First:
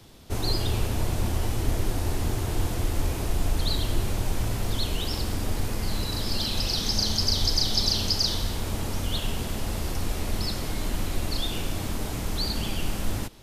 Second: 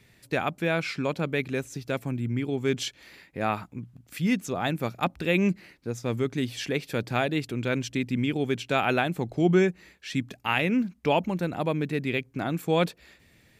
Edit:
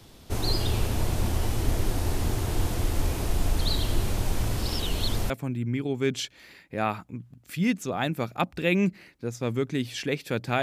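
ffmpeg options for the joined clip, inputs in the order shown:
-filter_complex "[0:a]apad=whole_dur=10.62,atrim=end=10.62,asplit=2[s0][s1];[s0]atrim=end=4.572[s2];[s1]atrim=start=4.568:end=5.302,asetpts=PTS-STARTPTS,areverse[s3];[1:a]atrim=start=1.928:end=7.25[s4];[s2][s3]acrossfade=d=0.004:c1=hsin:c2=hsin[s5];[s5][s4]acrossfade=d=0.004:c1=hsin:c2=hsin"

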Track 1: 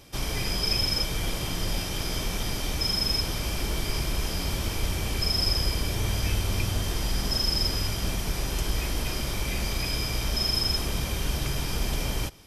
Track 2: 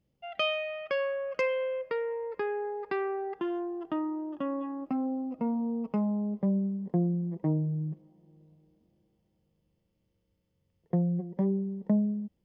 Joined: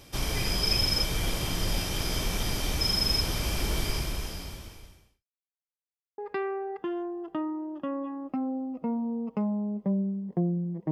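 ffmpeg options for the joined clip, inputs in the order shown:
-filter_complex "[0:a]apad=whole_dur=10.91,atrim=end=10.91,asplit=2[s0][s1];[s0]atrim=end=5.25,asetpts=PTS-STARTPTS,afade=t=out:st=3.82:d=1.43:c=qua[s2];[s1]atrim=start=5.25:end=6.18,asetpts=PTS-STARTPTS,volume=0[s3];[1:a]atrim=start=2.75:end=7.48,asetpts=PTS-STARTPTS,afade=t=in:d=0.004:c=hsin[s4];[s2][s3][s4]concat=n=3:v=0:a=1"

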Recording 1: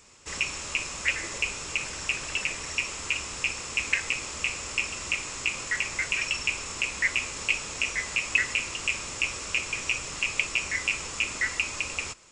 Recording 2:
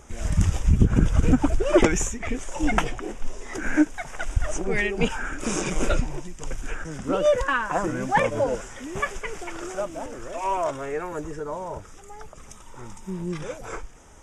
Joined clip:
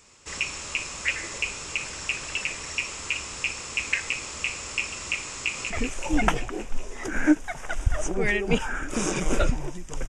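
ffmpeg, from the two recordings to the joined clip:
-filter_complex "[0:a]apad=whole_dur=10.08,atrim=end=10.08,atrim=end=5.702[s0];[1:a]atrim=start=2.198:end=6.58[s1];[s0][s1]acrossfade=d=0.004:c1=hsin:c2=hsin,asplit=2[s2][s3];[s3]afade=t=in:st=5.36:d=0.01,afade=t=out:st=5.7:d=0.01,aecho=0:1:190|380|570|760|950|1140|1330|1520|1710|1900|2090|2280:0.530884|0.371619|0.260133|0.182093|0.127465|0.0892257|0.062458|0.0437206|0.0306044|0.0214231|0.0149962|0.0104973[s4];[s2][s4]amix=inputs=2:normalize=0"

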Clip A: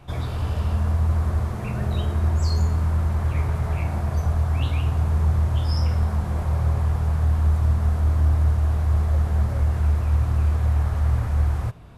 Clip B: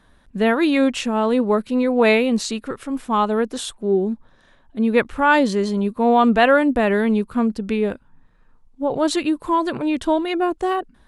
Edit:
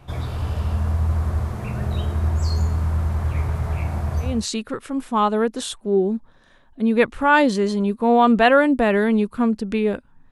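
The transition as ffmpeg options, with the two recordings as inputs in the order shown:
-filter_complex "[0:a]apad=whole_dur=10.31,atrim=end=10.31,atrim=end=4.46,asetpts=PTS-STARTPTS[s0];[1:a]atrim=start=2.17:end=8.28,asetpts=PTS-STARTPTS[s1];[s0][s1]acrossfade=d=0.26:c1=tri:c2=tri"

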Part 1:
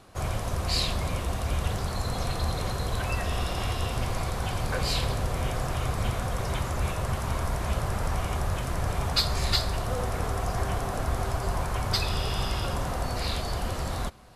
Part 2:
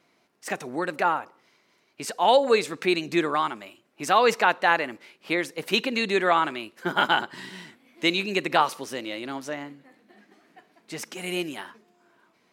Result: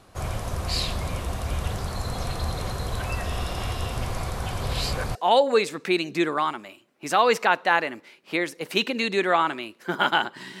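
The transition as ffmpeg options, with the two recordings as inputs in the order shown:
-filter_complex "[0:a]apad=whole_dur=10.6,atrim=end=10.6,asplit=2[s0][s1];[s0]atrim=end=4.612[s2];[s1]atrim=start=4.608:end=5.152,asetpts=PTS-STARTPTS,areverse[s3];[1:a]atrim=start=2.118:end=7.57[s4];[s2][s3]acrossfade=d=0.004:c1=hsin:c2=hsin[s5];[s5][s4]acrossfade=d=0.004:c1=hsin:c2=hsin"

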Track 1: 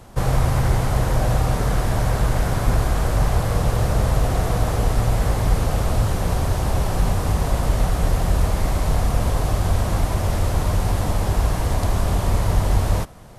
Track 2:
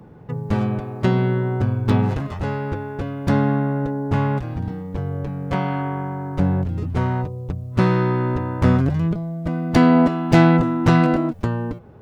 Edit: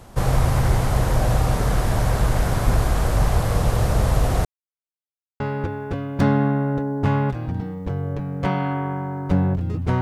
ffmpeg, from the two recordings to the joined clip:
-filter_complex "[0:a]apad=whole_dur=10.01,atrim=end=10.01,asplit=2[s0][s1];[s0]atrim=end=4.45,asetpts=PTS-STARTPTS,afade=t=out:st=4.446:d=0.004:c=hsin[s2];[s1]atrim=start=4.45:end=5.4,asetpts=PTS-STARTPTS,volume=0[s3];[1:a]atrim=start=2.48:end=7.09,asetpts=PTS-STARTPTS,afade=t=in:d=0.004:c=hsin[s4];[s2][s3][s4]concat=n=3:v=0:a=1"

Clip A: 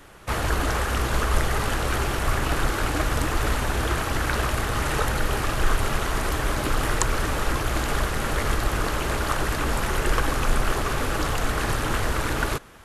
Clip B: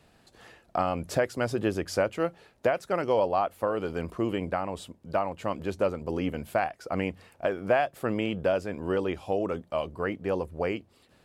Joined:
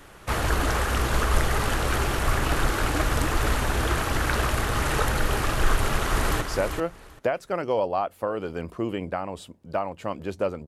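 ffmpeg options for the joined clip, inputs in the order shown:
-filter_complex "[0:a]apad=whole_dur=10.67,atrim=end=10.67,atrim=end=6.412[s0];[1:a]atrim=start=1.808:end=6.07[s1];[s0][s1]acrossfade=d=0.004:c1=hsin:c2=hsin,asplit=2[s2][s3];[s3]afade=t=in:st=5.7:d=0.01,afade=t=out:st=6.41:d=0.01,aecho=0:1:390|780|1170:0.473151|0.0709727|0.0106459[s4];[s2][s4]amix=inputs=2:normalize=0"

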